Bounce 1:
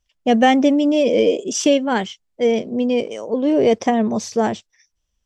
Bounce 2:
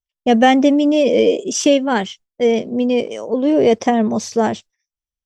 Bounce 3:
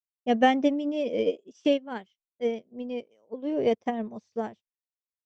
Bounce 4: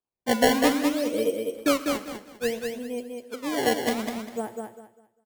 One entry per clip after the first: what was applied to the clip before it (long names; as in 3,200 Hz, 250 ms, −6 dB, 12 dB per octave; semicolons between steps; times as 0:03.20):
noise gate with hold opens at −30 dBFS; level +2 dB
high-frequency loss of the air 100 metres; expander for the loud parts 2.5 to 1, over −28 dBFS; level −6.5 dB
sample-and-hold swept by an LFO 20×, swing 160% 0.61 Hz; repeating echo 199 ms, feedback 26%, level −4.5 dB; on a send at −13.5 dB: convolution reverb, pre-delay 3 ms